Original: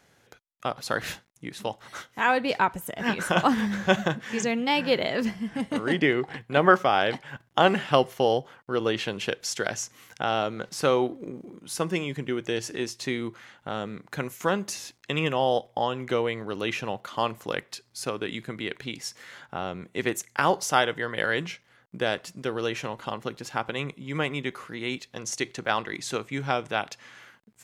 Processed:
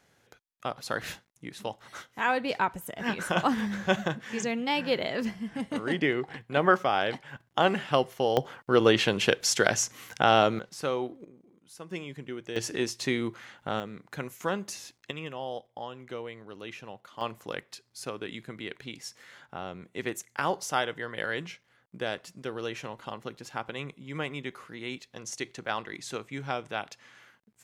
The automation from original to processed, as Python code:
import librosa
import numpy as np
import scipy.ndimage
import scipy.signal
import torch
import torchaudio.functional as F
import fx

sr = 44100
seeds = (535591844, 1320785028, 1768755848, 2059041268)

y = fx.gain(x, sr, db=fx.steps((0.0, -4.0), (8.37, 5.0), (10.59, -7.5), (11.25, -16.5), (11.91, -9.0), (12.56, 1.0), (13.8, -5.0), (15.11, -12.5), (17.21, -6.0)))